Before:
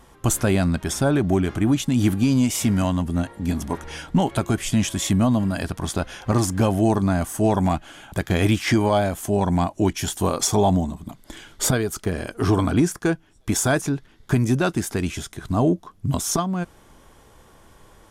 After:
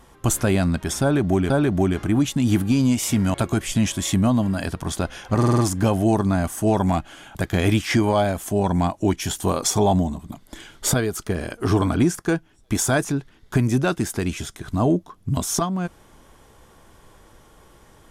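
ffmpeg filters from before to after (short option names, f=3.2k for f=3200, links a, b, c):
-filter_complex "[0:a]asplit=7[a][b][c][d][e][f][g];[a]atrim=end=1.502[h];[b]atrim=start=1.018:end=2.862[i];[c]atrim=start=4.308:end=6.402[j];[d]atrim=start=6.348:end=6.402[k];[e]atrim=start=6.348:end=6.402[l];[f]atrim=start=6.348:end=6.402[m];[g]atrim=start=6.348[n];[h][i]acrossfade=d=0.004:c1=hsin:c2=hsin[o];[o][j]acrossfade=d=0.004:c1=hsin:c2=hsin[p];[p][k]acrossfade=d=0.004:c1=hsin:c2=hsin[q];[q][l]acrossfade=d=0.004:c1=hsin:c2=hsin[r];[r][m]acrossfade=d=0.004:c1=hsin:c2=hsin[s];[s][n]acrossfade=d=0.004:c1=hsin:c2=hsin"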